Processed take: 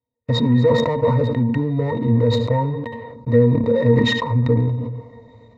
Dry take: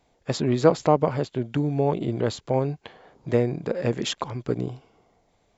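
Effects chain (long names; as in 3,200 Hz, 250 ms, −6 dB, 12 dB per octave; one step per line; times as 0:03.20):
dynamic equaliser 1,100 Hz, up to +6 dB, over −36 dBFS, Q 0.71
leveller curve on the samples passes 5
downward compressor, threshold −8 dBFS, peak gain reduction 6 dB
resonances in every octave A#, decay 0.1 s
on a send at −18.5 dB: convolution reverb RT60 0.35 s, pre-delay 65 ms
on the sum: level that may fall only so fast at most 35 dB per second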